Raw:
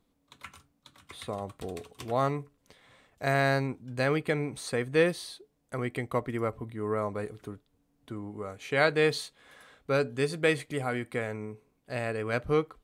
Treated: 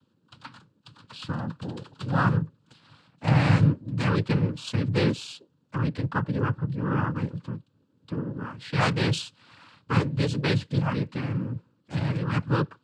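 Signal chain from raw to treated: bass shelf 230 Hz +10.5 dB; static phaser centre 2 kHz, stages 6; noise-vocoded speech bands 8; trim +5 dB

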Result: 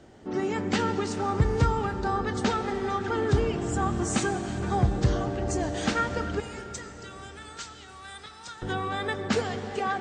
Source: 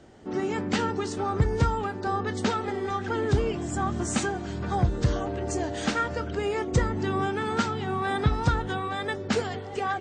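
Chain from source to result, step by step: 6.40–8.62 s: differentiator; reverberation RT60 4.6 s, pre-delay 82 ms, DRR 9.5 dB

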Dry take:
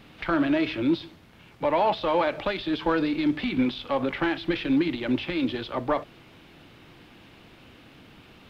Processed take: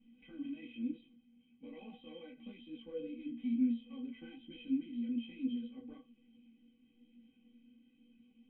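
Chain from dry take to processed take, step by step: cascade formant filter i; inharmonic resonator 230 Hz, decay 0.37 s, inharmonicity 0.03; detune thickener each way 38 cents; trim +11.5 dB

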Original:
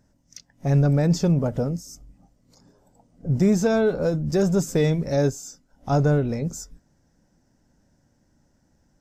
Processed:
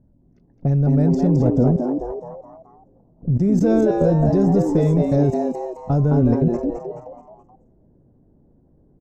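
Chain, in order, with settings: level-controlled noise filter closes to 890 Hz, open at -18 dBFS; tilt shelf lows +9 dB, about 730 Hz; level held to a coarse grid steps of 20 dB; frequency-shifting echo 214 ms, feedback 43%, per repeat +120 Hz, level -5 dB; trim +3.5 dB

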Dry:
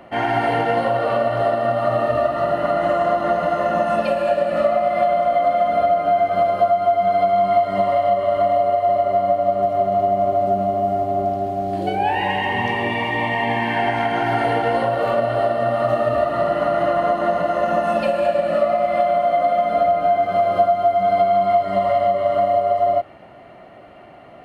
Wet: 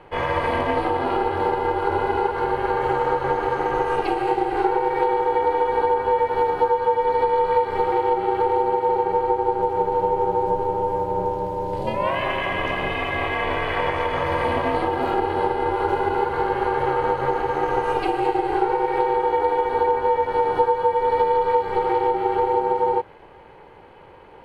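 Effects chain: ring modulator 210 Hz

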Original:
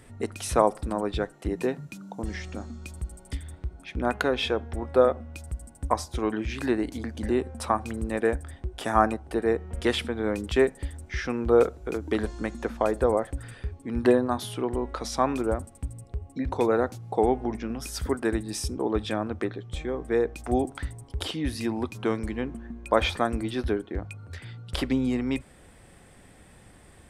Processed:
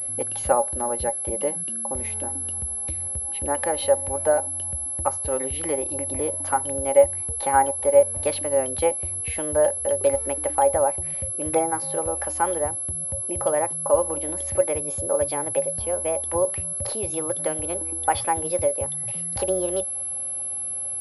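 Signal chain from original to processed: gliding tape speed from 113% -> 145%; in parallel at +0.5 dB: compression, threshold -31 dBFS, peak gain reduction 16 dB; on the sum: small resonant body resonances 560/820 Hz, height 18 dB, ringing for 95 ms; class-D stage that switches slowly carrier 11 kHz; trim -7.5 dB

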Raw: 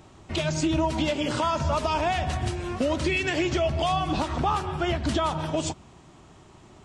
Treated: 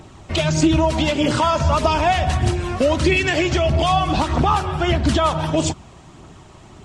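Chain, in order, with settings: phaser 1.6 Hz, delay 1.9 ms, feedback 31%; trim +7 dB

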